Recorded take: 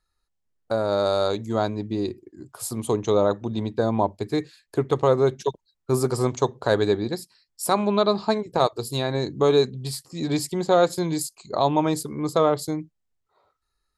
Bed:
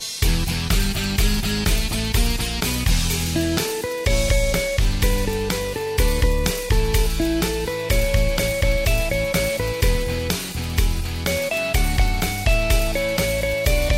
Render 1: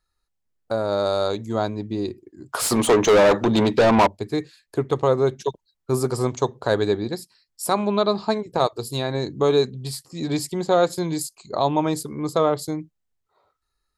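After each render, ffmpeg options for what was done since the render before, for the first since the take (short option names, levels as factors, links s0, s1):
-filter_complex "[0:a]asplit=3[s0][s1][s2];[s0]afade=t=out:st=2.52:d=0.02[s3];[s1]asplit=2[s4][s5];[s5]highpass=f=720:p=1,volume=28.2,asoftclip=type=tanh:threshold=0.422[s6];[s4][s6]amix=inputs=2:normalize=0,lowpass=f=3300:p=1,volume=0.501,afade=t=in:st=2.52:d=0.02,afade=t=out:st=4.06:d=0.02[s7];[s2]afade=t=in:st=4.06:d=0.02[s8];[s3][s7][s8]amix=inputs=3:normalize=0"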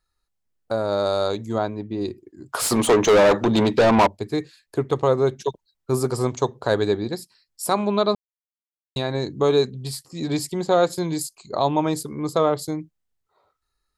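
-filter_complex "[0:a]asettb=1/sr,asplit=3[s0][s1][s2];[s0]atrim=end=1.584[s3];[s1]atrim=start=1.58:end=2.01,asetpts=PTS-STARTPTS,afade=t=in:d=0.004:c=qsin,afade=t=out:st=0.426:d=0.004:c=qsin,bass=f=250:g=-3,treble=f=4000:g=-11[s4];[s2]atrim=start=2.006[s5];[s3][s4]acrossfade=d=0.004:c1=hsin:c2=qsin[s6];[s6][s5]acrossfade=d=0.004:c1=qsin:c2=hsin,asplit=3[s7][s8][s9];[s7]atrim=end=8.15,asetpts=PTS-STARTPTS,afade=t=out:st=8.146:d=0.004:c=hsin[s10];[s8]atrim=start=8.15:end=8.96,asetpts=PTS-STARTPTS,volume=0[s11];[s9]atrim=start=8.96,asetpts=PTS-STARTPTS,afade=t=in:d=0.004:c=hsin[s12];[s10][s11][s12]concat=n=3:v=0:a=1"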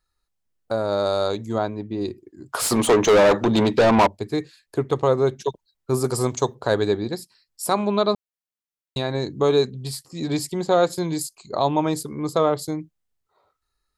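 -filter_complex "[0:a]asettb=1/sr,asplit=3[s0][s1][s2];[s0]atrim=end=6.044[s3];[s1]atrim=start=6.04:end=6.55,asetpts=PTS-STARTPTS,afade=t=in:d=0.004:c=qsin,afade=t=out:st=0.506:d=0.004:c=qsin,highshelf=f=6900:g=12[s4];[s2]atrim=start=6.546[s5];[s3][s4]acrossfade=d=0.004:c1=hsin:c2=qsin[s6];[s6][s5]acrossfade=d=0.004:c1=qsin:c2=hsin"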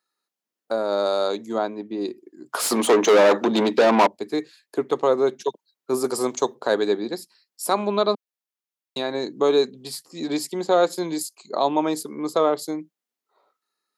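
-af "highpass=f=220:w=0.5412,highpass=f=220:w=1.3066,equalizer=f=8200:w=5.7:g=-3.5"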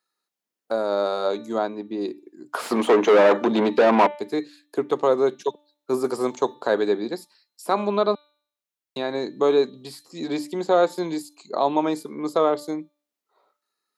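-filter_complex "[0:a]bandreject=f=294.8:t=h:w=4,bandreject=f=589.6:t=h:w=4,bandreject=f=884.4:t=h:w=4,bandreject=f=1179.2:t=h:w=4,bandreject=f=1474:t=h:w=4,bandreject=f=1768.8:t=h:w=4,bandreject=f=2063.6:t=h:w=4,bandreject=f=2358.4:t=h:w=4,bandreject=f=2653.2:t=h:w=4,bandreject=f=2948:t=h:w=4,bandreject=f=3242.8:t=h:w=4,bandreject=f=3537.6:t=h:w=4,bandreject=f=3832.4:t=h:w=4,bandreject=f=4127.2:t=h:w=4,acrossover=split=3100[s0][s1];[s1]acompressor=threshold=0.00891:ratio=4:attack=1:release=60[s2];[s0][s2]amix=inputs=2:normalize=0"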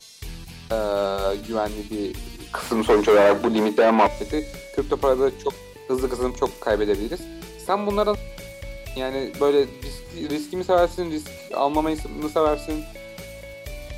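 -filter_complex "[1:a]volume=0.141[s0];[0:a][s0]amix=inputs=2:normalize=0"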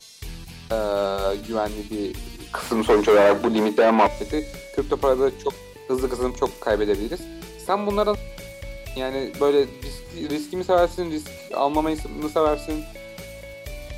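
-af anull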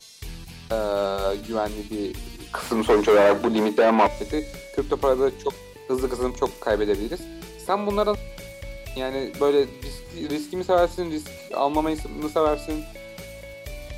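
-af "volume=0.891"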